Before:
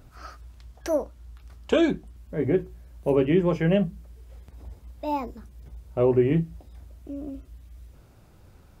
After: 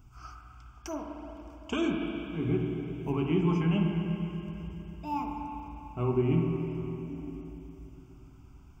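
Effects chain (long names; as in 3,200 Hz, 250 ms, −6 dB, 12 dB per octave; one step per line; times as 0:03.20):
phaser with its sweep stopped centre 2,700 Hz, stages 8
spring reverb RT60 3.6 s, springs 41/49/58 ms, chirp 25 ms, DRR 1 dB
level −3.5 dB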